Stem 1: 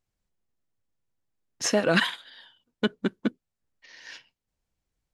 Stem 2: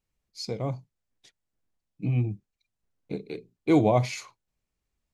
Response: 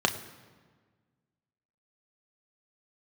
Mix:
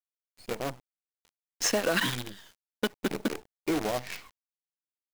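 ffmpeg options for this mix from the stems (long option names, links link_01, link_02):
-filter_complex "[0:a]highpass=frequency=98:poles=1,acompressor=threshold=-24dB:ratio=4,volume=1.5dB[link_01];[1:a]lowpass=frequency=3100:width=0.5412,lowpass=frequency=3100:width=1.3066,acompressor=threshold=-25dB:ratio=12,volume=0.5dB[link_02];[link_01][link_02]amix=inputs=2:normalize=0,equalizer=frequency=96:width=1.3:gain=-15,acrusher=bits=6:dc=4:mix=0:aa=0.000001"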